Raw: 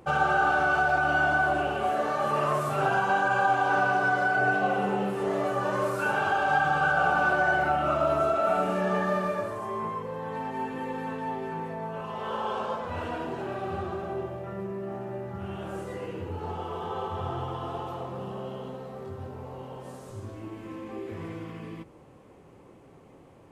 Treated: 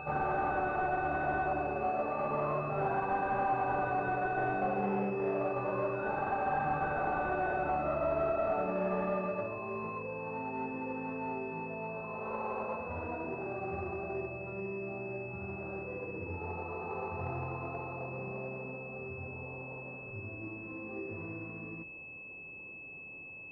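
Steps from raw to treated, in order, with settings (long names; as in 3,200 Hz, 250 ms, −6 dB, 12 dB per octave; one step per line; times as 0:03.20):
hard clipping −20.5 dBFS, distortion −16 dB
echo ahead of the sound 100 ms −12 dB
switching amplifier with a slow clock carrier 2,600 Hz
level −5 dB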